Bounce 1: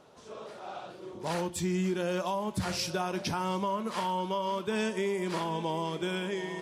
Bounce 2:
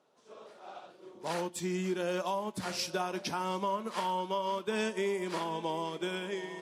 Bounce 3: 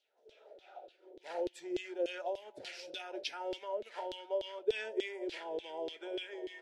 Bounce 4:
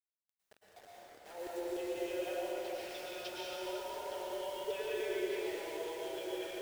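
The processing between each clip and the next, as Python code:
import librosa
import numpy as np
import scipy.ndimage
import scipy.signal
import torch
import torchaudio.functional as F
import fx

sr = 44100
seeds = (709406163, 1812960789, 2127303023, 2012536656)

y1 = scipy.signal.sosfilt(scipy.signal.butter(2, 210.0, 'highpass', fs=sr, output='sos'), x)
y1 = fx.upward_expand(y1, sr, threshold_db=-54.0, expansion=1.5)
y2 = fx.filter_lfo_bandpass(y1, sr, shape='saw_down', hz=3.4, low_hz=370.0, high_hz=3800.0, q=2.5)
y2 = fx.fixed_phaser(y2, sr, hz=460.0, stages=4)
y2 = F.gain(torch.from_numpy(y2), 5.5).numpy()
y3 = fx.quant_dither(y2, sr, seeds[0], bits=8, dither='none')
y3 = fx.rev_plate(y3, sr, seeds[1], rt60_s=4.3, hf_ratio=0.65, predelay_ms=95, drr_db=-8.0)
y3 = F.gain(torch.from_numpy(y3), -9.0).numpy()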